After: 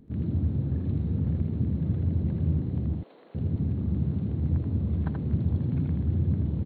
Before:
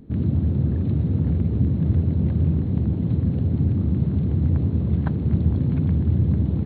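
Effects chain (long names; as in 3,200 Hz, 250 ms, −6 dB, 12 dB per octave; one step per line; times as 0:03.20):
0:02.95–0:03.35: high-pass filter 530 Hz 24 dB per octave
on a send: single-tap delay 81 ms −4 dB
on the sum: level −8 dB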